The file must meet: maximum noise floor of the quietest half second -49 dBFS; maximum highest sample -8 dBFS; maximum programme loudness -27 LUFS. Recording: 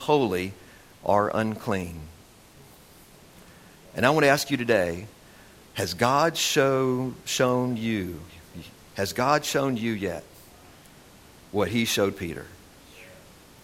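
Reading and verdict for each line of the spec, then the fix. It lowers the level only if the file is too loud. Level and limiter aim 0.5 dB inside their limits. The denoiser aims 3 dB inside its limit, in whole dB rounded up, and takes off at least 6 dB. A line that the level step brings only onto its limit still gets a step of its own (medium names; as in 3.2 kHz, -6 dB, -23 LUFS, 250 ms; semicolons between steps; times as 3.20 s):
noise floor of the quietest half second -51 dBFS: pass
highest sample -5.0 dBFS: fail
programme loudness -25.0 LUFS: fail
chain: trim -2.5 dB; peak limiter -8.5 dBFS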